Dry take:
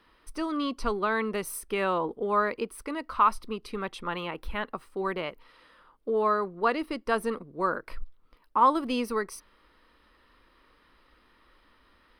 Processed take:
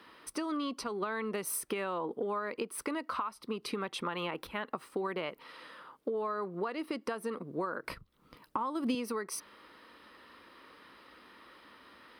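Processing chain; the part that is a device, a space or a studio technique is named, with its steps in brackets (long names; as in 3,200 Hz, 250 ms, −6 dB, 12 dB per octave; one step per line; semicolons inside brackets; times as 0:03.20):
serial compression, peaks first (downward compressor 10 to 1, threshold −33 dBFS, peak gain reduction 17 dB; downward compressor 3 to 1, threshold −40 dBFS, peak gain reduction 8 dB)
high-pass filter 150 Hz 12 dB per octave
0:07.84–0:08.95: bass and treble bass +11 dB, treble +3 dB
level +7 dB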